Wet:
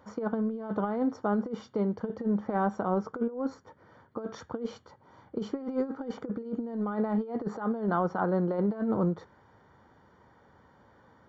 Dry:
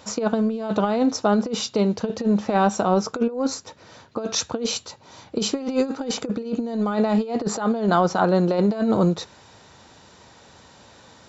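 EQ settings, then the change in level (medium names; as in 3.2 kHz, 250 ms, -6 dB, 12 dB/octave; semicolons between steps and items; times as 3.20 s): Savitzky-Golay filter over 41 samples; peaking EQ 660 Hz -4.5 dB 0.31 oct; -8.0 dB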